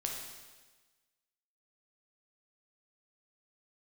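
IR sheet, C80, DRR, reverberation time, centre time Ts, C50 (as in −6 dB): 4.5 dB, −0.5 dB, 1.3 s, 56 ms, 2.5 dB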